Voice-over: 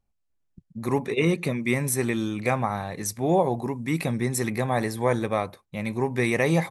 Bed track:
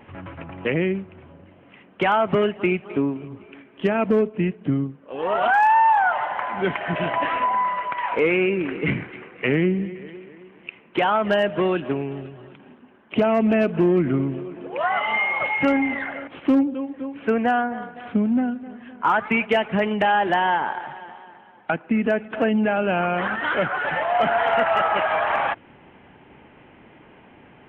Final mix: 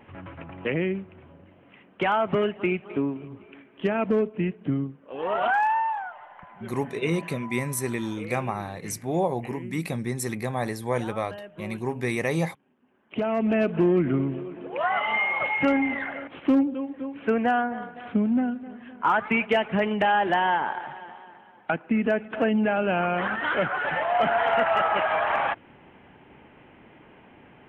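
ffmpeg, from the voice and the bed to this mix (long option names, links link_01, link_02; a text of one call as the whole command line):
ffmpeg -i stem1.wav -i stem2.wav -filter_complex "[0:a]adelay=5850,volume=-3.5dB[link_01];[1:a]volume=14dB,afade=type=out:start_time=5.47:duration=0.66:silence=0.149624,afade=type=in:start_time=12.74:duration=0.98:silence=0.125893[link_02];[link_01][link_02]amix=inputs=2:normalize=0" out.wav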